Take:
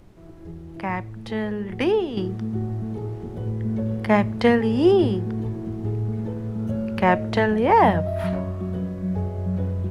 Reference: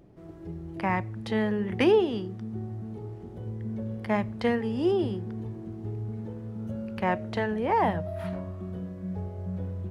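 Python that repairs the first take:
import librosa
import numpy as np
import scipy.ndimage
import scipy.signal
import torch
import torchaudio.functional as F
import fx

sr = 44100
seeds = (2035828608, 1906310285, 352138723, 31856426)

y = fx.noise_reduce(x, sr, print_start_s=0.0, print_end_s=0.5, reduce_db=6.0)
y = fx.fix_level(y, sr, at_s=2.17, step_db=-8.5)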